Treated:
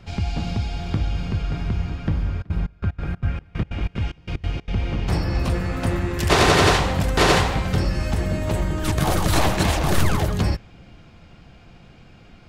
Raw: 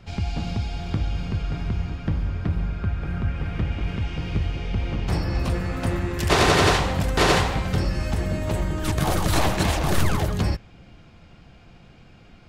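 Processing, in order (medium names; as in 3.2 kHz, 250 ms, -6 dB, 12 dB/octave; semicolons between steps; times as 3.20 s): 2.32–4.70 s: trance gate ".xx.xx..x" 186 bpm -24 dB; trim +2 dB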